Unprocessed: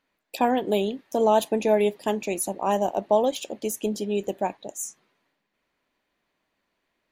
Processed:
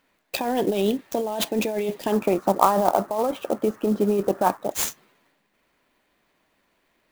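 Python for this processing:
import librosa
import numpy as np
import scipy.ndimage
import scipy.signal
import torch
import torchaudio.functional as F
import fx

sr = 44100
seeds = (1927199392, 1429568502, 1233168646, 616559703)

y = fx.over_compress(x, sr, threshold_db=-27.0, ratio=-1.0)
y = fx.lowpass_res(y, sr, hz=1300.0, q=6.2, at=(2.12, 4.71))
y = fx.clock_jitter(y, sr, seeds[0], jitter_ms=0.025)
y = F.gain(torch.from_numpy(y), 4.5).numpy()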